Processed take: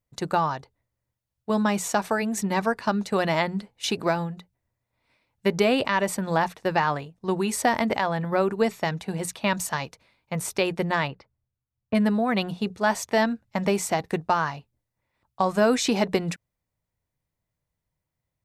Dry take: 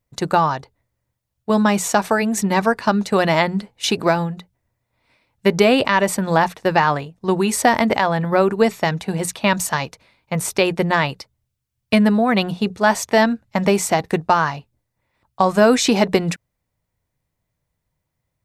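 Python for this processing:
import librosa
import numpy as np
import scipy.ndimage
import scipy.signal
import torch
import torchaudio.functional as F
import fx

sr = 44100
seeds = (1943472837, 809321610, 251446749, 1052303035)

y = fx.lowpass(x, sr, hz=fx.line((11.07, 2300.0), (11.94, 1200.0)), slope=12, at=(11.07, 11.94), fade=0.02)
y = F.gain(torch.from_numpy(y), -7.0).numpy()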